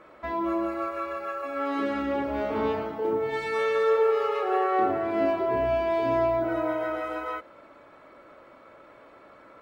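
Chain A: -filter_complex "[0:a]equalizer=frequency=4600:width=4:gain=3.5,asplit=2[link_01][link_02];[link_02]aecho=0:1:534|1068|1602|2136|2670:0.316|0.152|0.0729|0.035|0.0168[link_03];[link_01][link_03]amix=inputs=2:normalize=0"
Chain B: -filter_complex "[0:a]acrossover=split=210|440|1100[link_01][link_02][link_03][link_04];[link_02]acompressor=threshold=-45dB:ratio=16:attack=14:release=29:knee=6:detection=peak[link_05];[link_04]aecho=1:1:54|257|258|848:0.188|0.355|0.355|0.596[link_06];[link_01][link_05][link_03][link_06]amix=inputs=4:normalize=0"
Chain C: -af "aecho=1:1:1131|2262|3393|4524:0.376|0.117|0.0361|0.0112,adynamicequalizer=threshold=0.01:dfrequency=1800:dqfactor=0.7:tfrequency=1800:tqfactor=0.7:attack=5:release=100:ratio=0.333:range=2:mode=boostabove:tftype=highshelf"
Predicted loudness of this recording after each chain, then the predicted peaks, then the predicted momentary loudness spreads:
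−26.5, −28.5, −26.5 LKFS; −13.5, −16.0, −12.0 dBFS; 14, 15, 16 LU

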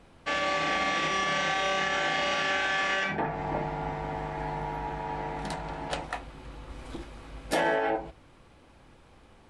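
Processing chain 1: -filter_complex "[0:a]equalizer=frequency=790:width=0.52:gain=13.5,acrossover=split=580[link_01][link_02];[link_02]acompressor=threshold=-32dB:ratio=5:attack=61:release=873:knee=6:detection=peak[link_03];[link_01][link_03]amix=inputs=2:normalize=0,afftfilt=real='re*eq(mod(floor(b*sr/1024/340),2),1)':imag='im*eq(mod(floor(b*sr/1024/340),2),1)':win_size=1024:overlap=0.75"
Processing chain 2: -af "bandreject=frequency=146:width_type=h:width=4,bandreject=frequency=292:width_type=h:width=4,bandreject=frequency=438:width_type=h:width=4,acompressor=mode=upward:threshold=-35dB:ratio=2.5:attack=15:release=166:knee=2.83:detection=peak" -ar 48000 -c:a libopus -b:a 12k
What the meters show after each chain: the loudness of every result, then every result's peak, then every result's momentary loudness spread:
−29.5, −31.0 LKFS; −11.0, −15.5 dBFS; 14, 20 LU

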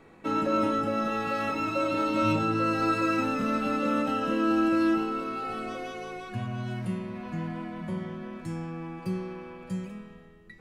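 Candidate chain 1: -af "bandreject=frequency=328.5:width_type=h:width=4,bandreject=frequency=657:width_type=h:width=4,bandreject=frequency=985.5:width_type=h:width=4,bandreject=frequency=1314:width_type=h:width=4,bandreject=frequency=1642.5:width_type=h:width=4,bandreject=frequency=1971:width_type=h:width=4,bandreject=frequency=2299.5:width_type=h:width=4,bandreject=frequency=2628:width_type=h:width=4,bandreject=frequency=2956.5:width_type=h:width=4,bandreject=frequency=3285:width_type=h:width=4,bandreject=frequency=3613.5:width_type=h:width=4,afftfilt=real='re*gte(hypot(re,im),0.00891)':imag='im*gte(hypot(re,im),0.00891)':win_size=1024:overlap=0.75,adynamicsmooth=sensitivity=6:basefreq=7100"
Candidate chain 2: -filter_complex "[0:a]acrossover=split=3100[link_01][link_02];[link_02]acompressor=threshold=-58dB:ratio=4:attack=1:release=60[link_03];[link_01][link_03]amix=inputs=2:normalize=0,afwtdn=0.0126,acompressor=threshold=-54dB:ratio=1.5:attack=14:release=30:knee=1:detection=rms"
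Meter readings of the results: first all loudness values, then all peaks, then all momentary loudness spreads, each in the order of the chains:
−30.0, −38.5 LKFS; −13.5, −24.0 dBFS; 11, 9 LU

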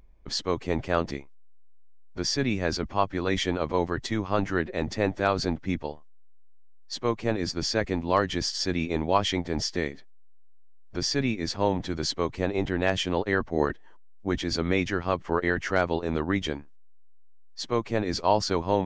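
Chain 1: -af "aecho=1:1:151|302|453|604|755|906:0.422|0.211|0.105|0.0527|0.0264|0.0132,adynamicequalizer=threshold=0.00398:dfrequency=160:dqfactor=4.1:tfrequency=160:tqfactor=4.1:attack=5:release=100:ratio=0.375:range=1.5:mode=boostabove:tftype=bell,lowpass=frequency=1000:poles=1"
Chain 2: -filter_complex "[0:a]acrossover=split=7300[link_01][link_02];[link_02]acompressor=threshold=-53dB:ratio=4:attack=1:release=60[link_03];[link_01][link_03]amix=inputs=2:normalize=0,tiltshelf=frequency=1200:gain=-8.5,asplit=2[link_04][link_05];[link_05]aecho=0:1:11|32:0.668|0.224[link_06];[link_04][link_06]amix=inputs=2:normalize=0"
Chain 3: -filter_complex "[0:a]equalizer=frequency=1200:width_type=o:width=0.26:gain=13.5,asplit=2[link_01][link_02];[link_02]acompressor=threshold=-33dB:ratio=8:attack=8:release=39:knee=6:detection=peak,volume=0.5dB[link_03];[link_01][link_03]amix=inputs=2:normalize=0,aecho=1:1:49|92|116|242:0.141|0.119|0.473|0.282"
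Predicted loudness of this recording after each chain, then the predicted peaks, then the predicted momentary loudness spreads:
−28.5, −25.5, −22.5 LKFS; −9.5, −4.0, −3.5 dBFS; 11, 9, 9 LU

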